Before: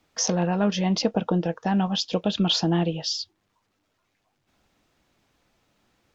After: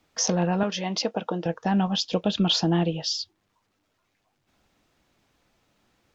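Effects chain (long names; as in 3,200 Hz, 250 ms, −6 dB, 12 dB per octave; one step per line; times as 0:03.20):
0:00.63–0:01.46: high-pass filter 460 Hz 6 dB per octave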